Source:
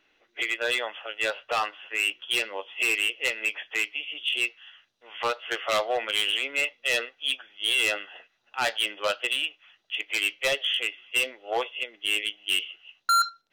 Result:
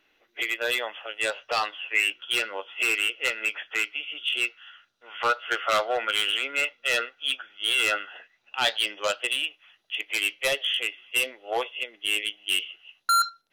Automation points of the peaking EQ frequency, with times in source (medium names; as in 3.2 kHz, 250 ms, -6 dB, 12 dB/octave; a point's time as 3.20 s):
peaking EQ +13.5 dB 0.21 oct
1.03 s 13 kHz
2.18 s 1.4 kHz
8.13 s 1.4 kHz
9.36 s 11 kHz